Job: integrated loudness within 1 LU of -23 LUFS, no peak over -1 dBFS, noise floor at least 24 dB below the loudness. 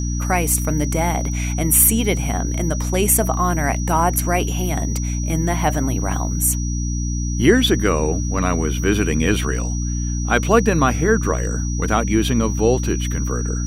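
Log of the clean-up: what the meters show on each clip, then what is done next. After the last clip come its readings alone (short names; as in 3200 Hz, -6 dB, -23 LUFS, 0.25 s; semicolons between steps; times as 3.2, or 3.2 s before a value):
hum 60 Hz; harmonics up to 300 Hz; hum level -20 dBFS; steady tone 5800 Hz; tone level -31 dBFS; loudness -19.0 LUFS; peak -1.5 dBFS; loudness target -23.0 LUFS
-> notches 60/120/180/240/300 Hz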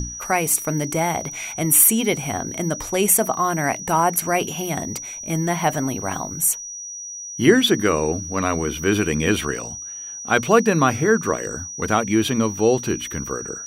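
hum none; steady tone 5800 Hz; tone level -31 dBFS
-> notch 5800 Hz, Q 30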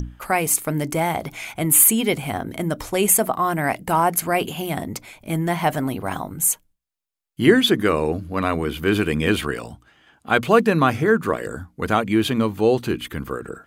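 steady tone none; loudness -20.5 LUFS; peak -1.5 dBFS; loudness target -23.0 LUFS
-> gain -2.5 dB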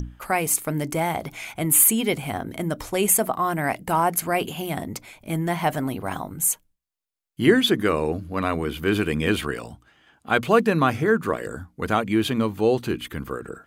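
loudness -23.0 LUFS; peak -4.0 dBFS; noise floor -68 dBFS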